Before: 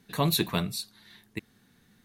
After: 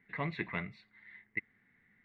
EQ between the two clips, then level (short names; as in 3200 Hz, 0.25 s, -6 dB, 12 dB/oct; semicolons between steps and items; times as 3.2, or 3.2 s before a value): ladder low-pass 2100 Hz, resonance 90%; +1.5 dB